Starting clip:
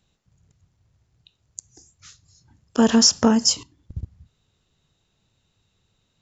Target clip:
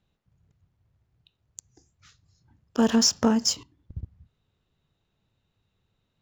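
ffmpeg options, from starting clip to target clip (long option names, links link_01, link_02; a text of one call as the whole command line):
ffmpeg -i in.wav -af "adynamicsmooth=sensitivity=5:basefreq=4000,volume=-4.5dB" out.wav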